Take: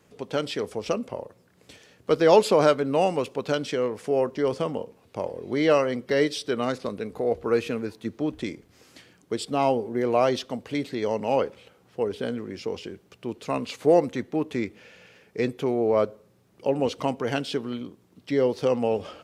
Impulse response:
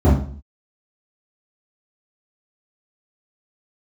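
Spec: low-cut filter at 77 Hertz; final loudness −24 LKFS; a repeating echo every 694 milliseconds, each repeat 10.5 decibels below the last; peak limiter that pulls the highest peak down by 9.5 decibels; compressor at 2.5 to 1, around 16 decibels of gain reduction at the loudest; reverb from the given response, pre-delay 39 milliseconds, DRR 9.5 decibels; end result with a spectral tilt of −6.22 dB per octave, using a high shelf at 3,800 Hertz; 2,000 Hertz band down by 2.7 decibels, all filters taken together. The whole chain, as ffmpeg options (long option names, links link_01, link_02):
-filter_complex "[0:a]highpass=77,equalizer=frequency=2000:width_type=o:gain=-5.5,highshelf=frequency=3800:gain=7,acompressor=threshold=-37dB:ratio=2.5,alimiter=level_in=5.5dB:limit=-24dB:level=0:latency=1,volume=-5.5dB,aecho=1:1:694|1388|2082:0.299|0.0896|0.0269,asplit=2[link_01][link_02];[1:a]atrim=start_sample=2205,adelay=39[link_03];[link_02][link_03]afir=irnorm=-1:irlink=0,volume=-31dB[link_04];[link_01][link_04]amix=inputs=2:normalize=0,volume=13dB"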